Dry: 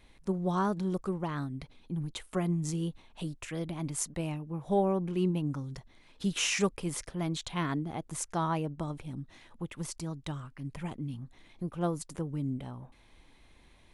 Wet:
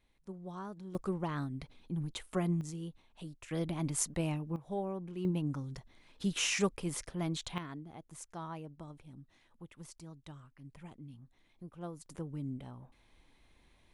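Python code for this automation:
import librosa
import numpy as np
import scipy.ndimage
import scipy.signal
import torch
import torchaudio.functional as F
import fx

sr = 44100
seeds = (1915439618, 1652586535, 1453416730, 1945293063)

y = fx.gain(x, sr, db=fx.steps((0.0, -14.5), (0.95, -2.0), (2.61, -9.0), (3.51, 0.5), (4.56, -10.0), (5.25, -2.5), (7.58, -12.5), (12.06, -6.0)))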